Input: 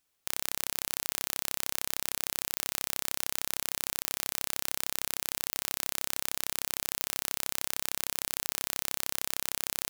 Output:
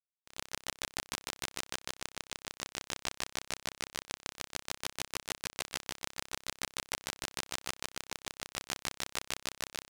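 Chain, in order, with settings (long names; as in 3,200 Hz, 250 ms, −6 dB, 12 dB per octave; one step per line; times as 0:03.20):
peak hold with a decay on every bin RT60 1.83 s
noise gate −32 dBFS, range −25 dB
0:01.66–0:04.31: parametric band 14,000 Hz −11 dB 0.34 octaves
transient designer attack 0 dB, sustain −4 dB
bit-depth reduction 6 bits, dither none
high-frequency loss of the air 59 metres
level +9.5 dB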